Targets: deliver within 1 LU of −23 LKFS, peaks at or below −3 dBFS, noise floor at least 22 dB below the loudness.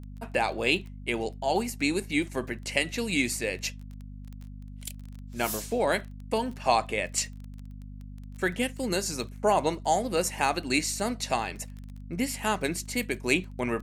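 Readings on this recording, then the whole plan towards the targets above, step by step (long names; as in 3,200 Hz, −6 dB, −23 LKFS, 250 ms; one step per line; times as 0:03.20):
crackle rate 21 per second; mains hum 50 Hz; hum harmonics up to 250 Hz; level of the hum −39 dBFS; integrated loudness −28.5 LKFS; sample peak −7.0 dBFS; target loudness −23.0 LKFS
→ click removal
hum removal 50 Hz, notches 5
level +5.5 dB
brickwall limiter −3 dBFS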